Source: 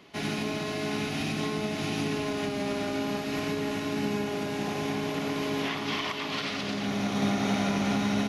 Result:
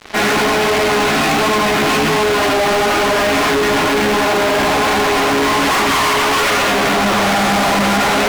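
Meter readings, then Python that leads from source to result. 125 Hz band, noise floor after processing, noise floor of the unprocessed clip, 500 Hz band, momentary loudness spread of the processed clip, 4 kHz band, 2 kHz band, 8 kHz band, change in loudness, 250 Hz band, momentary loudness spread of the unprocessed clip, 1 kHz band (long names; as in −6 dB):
+8.5 dB, −15 dBFS, −34 dBFS, +17.0 dB, 1 LU, +16.5 dB, +19.5 dB, +19.5 dB, +16.5 dB, +10.0 dB, 4 LU, +21.0 dB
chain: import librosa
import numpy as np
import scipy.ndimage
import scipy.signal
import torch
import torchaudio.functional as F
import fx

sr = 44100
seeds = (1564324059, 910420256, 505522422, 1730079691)

y = fx.highpass(x, sr, hz=300.0, slope=6)
y = fx.tilt_shelf(y, sr, db=-8.5, hz=660.0)
y = fx.room_early_taps(y, sr, ms=(31, 76), db=(-10.0, -7.0))
y = fx.chorus_voices(y, sr, voices=2, hz=1.3, base_ms=12, depth_ms=3.0, mix_pct=55)
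y = scipy.signal.sosfilt(scipy.signal.butter(2, 1200.0, 'lowpass', fs=sr, output='sos'), y)
y = fx.fuzz(y, sr, gain_db=52.0, gate_db=-58.0)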